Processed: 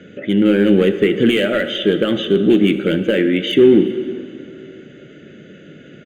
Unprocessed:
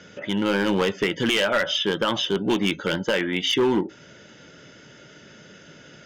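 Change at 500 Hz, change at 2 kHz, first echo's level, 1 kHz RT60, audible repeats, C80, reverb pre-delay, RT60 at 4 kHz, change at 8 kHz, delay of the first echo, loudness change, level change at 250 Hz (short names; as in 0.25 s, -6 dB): +9.5 dB, +2.0 dB, -22.5 dB, 2.6 s, 1, 11.0 dB, 30 ms, 2.0 s, n/a, 0.371 s, +8.0 dB, +11.0 dB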